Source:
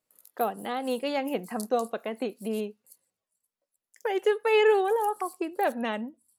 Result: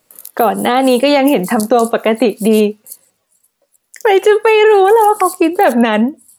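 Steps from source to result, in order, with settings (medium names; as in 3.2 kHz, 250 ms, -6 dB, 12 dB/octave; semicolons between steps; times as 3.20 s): loudness maximiser +23.5 dB; trim -1 dB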